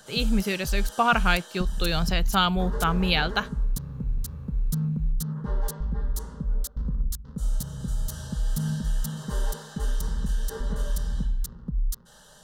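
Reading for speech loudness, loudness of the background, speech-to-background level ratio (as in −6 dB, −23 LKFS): −25.5 LKFS, −31.5 LKFS, 6.0 dB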